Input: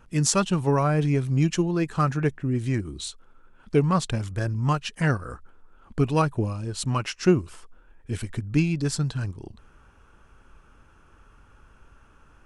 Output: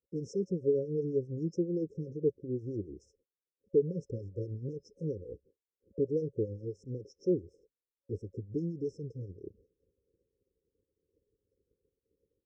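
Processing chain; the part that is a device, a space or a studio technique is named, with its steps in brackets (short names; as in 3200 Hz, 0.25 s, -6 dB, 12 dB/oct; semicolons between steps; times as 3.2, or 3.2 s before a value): guitar amplifier with harmonic tremolo (harmonic tremolo 7.5 Hz, depth 70%, crossover 620 Hz; soft clip -19.5 dBFS, distortion -14 dB; speaker cabinet 110–3700 Hz, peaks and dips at 140 Hz -9 dB, 230 Hz -8 dB, 430 Hz +8 dB, 630 Hz +7 dB, 960 Hz +9 dB, 1600 Hz -9 dB); gate -58 dBFS, range -35 dB; FFT band-reject 550–5200 Hz; gain -3 dB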